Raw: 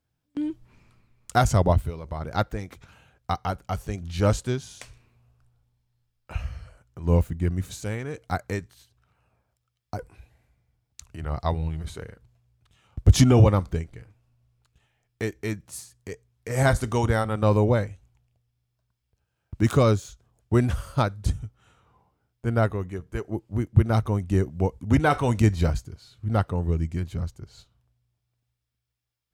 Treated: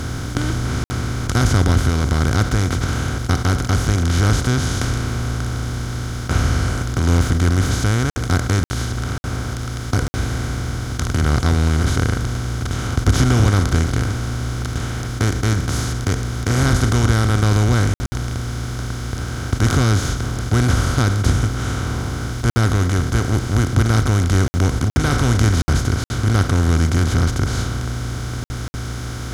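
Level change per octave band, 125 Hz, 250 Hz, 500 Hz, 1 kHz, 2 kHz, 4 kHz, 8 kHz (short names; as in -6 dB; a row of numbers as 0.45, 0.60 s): +9.0, +6.5, +1.0, +4.5, +10.5, +12.5, +13.0 dB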